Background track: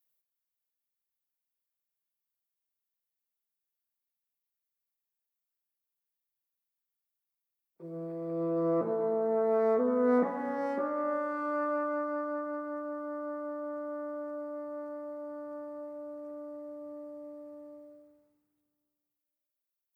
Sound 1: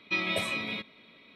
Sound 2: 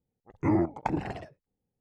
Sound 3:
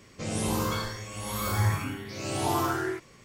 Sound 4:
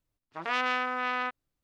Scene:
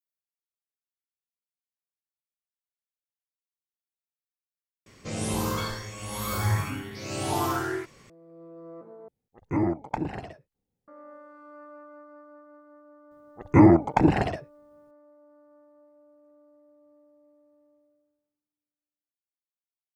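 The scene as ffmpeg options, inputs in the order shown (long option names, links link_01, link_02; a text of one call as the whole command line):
ffmpeg -i bed.wav -i cue0.wav -i cue1.wav -i cue2.wav -filter_complex "[2:a]asplit=2[link_01][link_02];[0:a]volume=-15.5dB[link_03];[link_02]alimiter=level_in=15.5dB:limit=-1dB:release=50:level=0:latency=1[link_04];[link_03]asplit=3[link_05][link_06][link_07];[link_05]atrim=end=4.864[link_08];[3:a]atrim=end=3.24[link_09];[link_06]atrim=start=8.096:end=9.084[link_10];[link_01]atrim=end=1.8,asetpts=PTS-STARTPTS,volume=-0.5dB[link_11];[link_07]atrim=start=10.876[link_12];[link_04]atrim=end=1.8,asetpts=PTS-STARTPTS,volume=-4.5dB,afade=type=in:duration=0.004:curve=hsin,afade=type=out:start_time=1.796:duration=0.004:curve=hsin,adelay=13110[link_13];[link_08][link_09]acrossfade=duration=0.004:curve1=hsin:curve2=hsin[link_14];[link_14][link_10]acrossfade=duration=0.004:curve1=hsin:curve2=hsin[link_15];[link_15][link_11]acrossfade=duration=0.004:curve1=hsin:curve2=hsin[link_16];[link_16][link_12]acrossfade=duration=0.004:curve1=hsin:curve2=hsin[link_17];[link_17][link_13]amix=inputs=2:normalize=0" out.wav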